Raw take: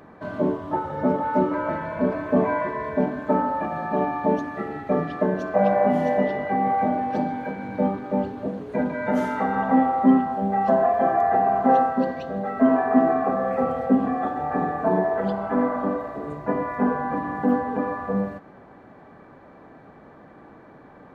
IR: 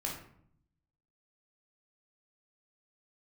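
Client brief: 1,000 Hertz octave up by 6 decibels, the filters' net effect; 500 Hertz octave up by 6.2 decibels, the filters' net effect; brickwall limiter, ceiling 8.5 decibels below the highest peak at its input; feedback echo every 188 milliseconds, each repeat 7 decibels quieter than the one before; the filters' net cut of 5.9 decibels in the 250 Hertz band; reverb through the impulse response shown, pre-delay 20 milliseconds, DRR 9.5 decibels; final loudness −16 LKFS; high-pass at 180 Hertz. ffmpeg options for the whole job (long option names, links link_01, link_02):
-filter_complex "[0:a]highpass=180,equalizer=frequency=250:width_type=o:gain=-7.5,equalizer=frequency=500:width_type=o:gain=7.5,equalizer=frequency=1000:width_type=o:gain=5.5,alimiter=limit=-9.5dB:level=0:latency=1,aecho=1:1:188|376|564|752|940:0.447|0.201|0.0905|0.0407|0.0183,asplit=2[link_01][link_02];[1:a]atrim=start_sample=2205,adelay=20[link_03];[link_02][link_03]afir=irnorm=-1:irlink=0,volume=-12dB[link_04];[link_01][link_04]amix=inputs=2:normalize=0,volume=3.5dB"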